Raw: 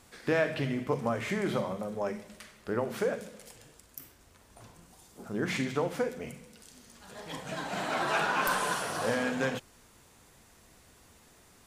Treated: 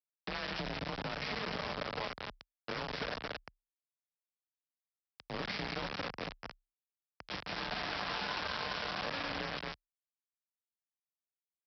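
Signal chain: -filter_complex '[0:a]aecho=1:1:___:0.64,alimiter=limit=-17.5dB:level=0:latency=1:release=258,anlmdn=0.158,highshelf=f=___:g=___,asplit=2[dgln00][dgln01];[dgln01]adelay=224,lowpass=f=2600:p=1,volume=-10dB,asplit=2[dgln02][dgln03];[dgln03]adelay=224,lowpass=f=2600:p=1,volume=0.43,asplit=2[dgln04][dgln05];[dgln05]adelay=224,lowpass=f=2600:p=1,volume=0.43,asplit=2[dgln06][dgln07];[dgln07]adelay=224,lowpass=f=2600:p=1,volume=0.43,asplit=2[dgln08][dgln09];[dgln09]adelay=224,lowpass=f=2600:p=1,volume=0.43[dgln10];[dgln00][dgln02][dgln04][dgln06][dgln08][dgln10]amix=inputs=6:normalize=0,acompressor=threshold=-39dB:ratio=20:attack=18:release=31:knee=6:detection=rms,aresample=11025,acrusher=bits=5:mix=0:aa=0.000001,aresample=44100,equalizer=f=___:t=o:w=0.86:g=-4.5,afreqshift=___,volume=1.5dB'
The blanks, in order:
7.1, 2900, -2, 300, 32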